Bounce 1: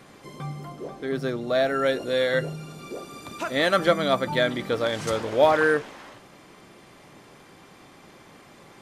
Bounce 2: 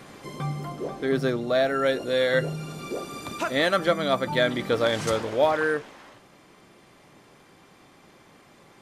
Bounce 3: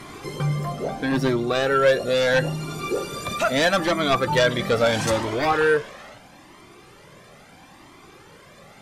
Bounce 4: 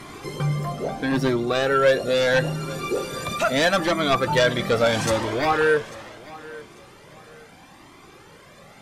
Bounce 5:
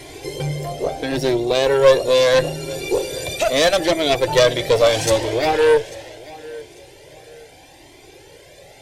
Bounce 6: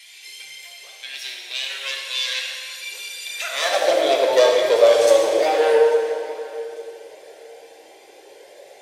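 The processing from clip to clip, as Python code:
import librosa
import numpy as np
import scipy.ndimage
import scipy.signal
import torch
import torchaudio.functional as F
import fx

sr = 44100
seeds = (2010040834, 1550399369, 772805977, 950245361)

y1 = fx.rider(x, sr, range_db=4, speed_s=0.5)
y2 = fx.fold_sine(y1, sr, drive_db=7, ceiling_db=-8.5)
y2 = fx.comb_cascade(y2, sr, direction='rising', hz=0.76)
y3 = fx.echo_feedback(y2, sr, ms=845, feedback_pct=30, wet_db=-19.5)
y4 = fx.fixed_phaser(y3, sr, hz=500.0, stages=4)
y4 = fx.cheby_harmonics(y4, sr, harmonics=(2, 6), levels_db=(-12, -30), full_scale_db=-8.5)
y4 = y4 * 10.0 ** (6.5 / 20.0)
y5 = fx.rev_plate(y4, sr, seeds[0], rt60_s=2.4, hf_ratio=0.75, predelay_ms=0, drr_db=-1.0)
y5 = fx.filter_sweep_highpass(y5, sr, from_hz=2600.0, to_hz=490.0, start_s=3.25, end_s=3.95, q=1.9)
y5 = y5 * 10.0 ** (-6.5 / 20.0)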